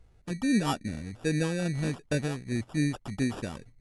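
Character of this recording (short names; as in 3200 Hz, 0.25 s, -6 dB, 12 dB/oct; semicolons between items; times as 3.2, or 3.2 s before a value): phasing stages 4, 2.5 Hz, lowest notch 620–1300 Hz; aliases and images of a low sample rate 2100 Hz, jitter 0%; AC-3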